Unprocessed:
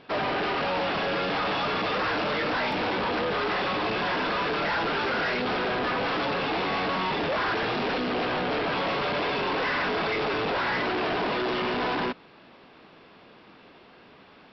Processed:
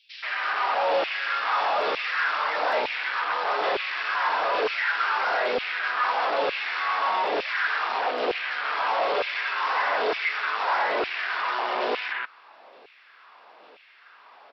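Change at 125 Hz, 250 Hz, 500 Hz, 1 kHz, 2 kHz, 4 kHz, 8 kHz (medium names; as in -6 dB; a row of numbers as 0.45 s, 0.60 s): under -20 dB, -12.5 dB, -0.5 dB, +3.0 dB, +3.0 dB, -1.0 dB, no reading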